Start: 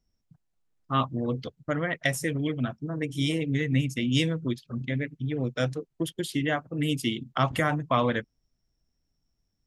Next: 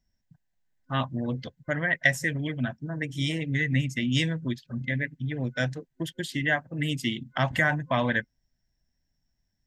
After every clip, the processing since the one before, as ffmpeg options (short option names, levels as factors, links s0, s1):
-af "superequalizer=6b=0.631:7b=0.501:10b=0.501:11b=2.24:16b=0.398"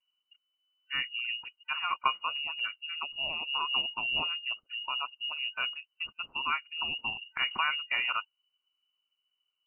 -af "lowpass=f=2600:t=q:w=0.5098,lowpass=f=2600:t=q:w=0.6013,lowpass=f=2600:t=q:w=0.9,lowpass=f=2600:t=q:w=2.563,afreqshift=-3000,volume=0.531"